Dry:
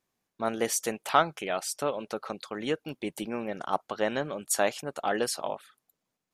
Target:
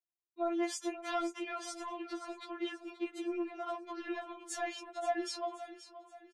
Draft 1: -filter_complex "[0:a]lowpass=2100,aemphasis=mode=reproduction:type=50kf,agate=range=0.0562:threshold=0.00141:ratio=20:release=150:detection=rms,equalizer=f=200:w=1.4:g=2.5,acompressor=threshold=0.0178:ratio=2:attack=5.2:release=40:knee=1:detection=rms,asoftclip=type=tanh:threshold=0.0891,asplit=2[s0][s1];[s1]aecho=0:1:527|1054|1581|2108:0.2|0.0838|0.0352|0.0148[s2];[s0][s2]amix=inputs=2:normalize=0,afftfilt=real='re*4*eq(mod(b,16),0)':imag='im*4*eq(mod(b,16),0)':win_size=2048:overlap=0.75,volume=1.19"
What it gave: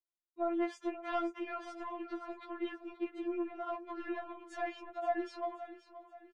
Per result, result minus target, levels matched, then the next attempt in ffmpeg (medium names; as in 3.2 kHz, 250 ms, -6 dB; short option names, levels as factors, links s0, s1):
8 kHz band -18.5 dB; 125 Hz band +5.5 dB
-filter_complex "[0:a]lowpass=7500,aemphasis=mode=reproduction:type=50kf,agate=range=0.0562:threshold=0.00141:ratio=20:release=150:detection=rms,equalizer=f=200:w=1.4:g=2.5,acompressor=threshold=0.0178:ratio=2:attack=5.2:release=40:knee=1:detection=rms,asoftclip=type=tanh:threshold=0.0891,asplit=2[s0][s1];[s1]aecho=0:1:527|1054|1581|2108:0.2|0.0838|0.0352|0.0148[s2];[s0][s2]amix=inputs=2:normalize=0,afftfilt=real='re*4*eq(mod(b,16),0)':imag='im*4*eq(mod(b,16),0)':win_size=2048:overlap=0.75,volume=1.19"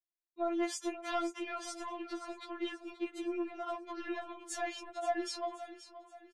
125 Hz band +5.0 dB
-filter_complex "[0:a]lowpass=7500,aemphasis=mode=reproduction:type=50kf,agate=range=0.0562:threshold=0.00141:ratio=20:release=150:detection=rms,equalizer=f=200:w=1.4:g=2.5,acompressor=threshold=0.0178:ratio=2:attack=5.2:release=40:knee=1:detection=rms,highpass=f=110:w=0.5412,highpass=f=110:w=1.3066,asoftclip=type=tanh:threshold=0.0891,asplit=2[s0][s1];[s1]aecho=0:1:527|1054|1581|2108:0.2|0.0838|0.0352|0.0148[s2];[s0][s2]amix=inputs=2:normalize=0,afftfilt=real='re*4*eq(mod(b,16),0)':imag='im*4*eq(mod(b,16),0)':win_size=2048:overlap=0.75,volume=1.19"